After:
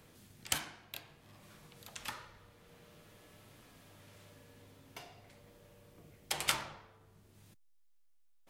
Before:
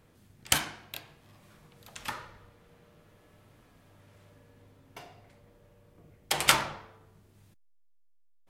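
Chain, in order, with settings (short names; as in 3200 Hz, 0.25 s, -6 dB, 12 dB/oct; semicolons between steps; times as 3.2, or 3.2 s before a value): three-band squash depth 40%; gain -5 dB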